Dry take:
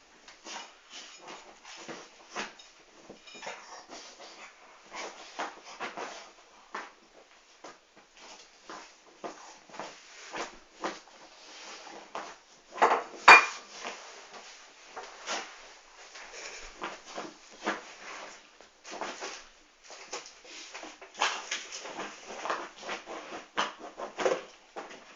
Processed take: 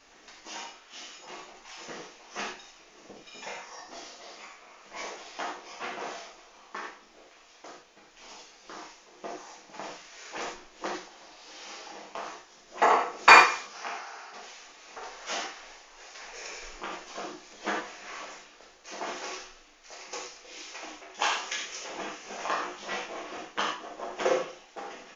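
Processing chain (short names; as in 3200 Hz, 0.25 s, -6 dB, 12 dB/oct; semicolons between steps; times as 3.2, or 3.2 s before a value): 13.73–14.34 speaker cabinet 280–6100 Hz, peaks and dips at 540 Hz -8 dB, 800 Hz +7 dB, 1400 Hz +10 dB, 3400 Hz -7 dB; 22.23–23.06 doubler 20 ms -3.5 dB; echo 0.164 s -22.5 dB; non-linear reverb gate 0.12 s flat, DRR -0.5 dB; gain -1 dB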